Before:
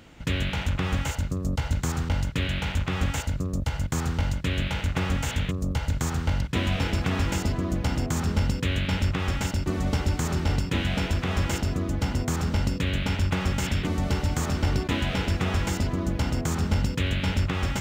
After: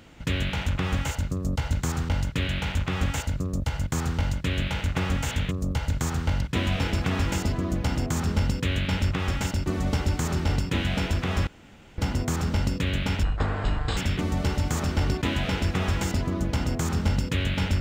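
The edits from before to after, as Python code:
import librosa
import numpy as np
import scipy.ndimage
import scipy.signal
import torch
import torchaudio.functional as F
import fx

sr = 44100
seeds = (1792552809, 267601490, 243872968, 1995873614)

y = fx.edit(x, sr, fx.room_tone_fill(start_s=11.47, length_s=0.51),
    fx.speed_span(start_s=13.23, length_s=0.4, speed=0.54), tone=tone)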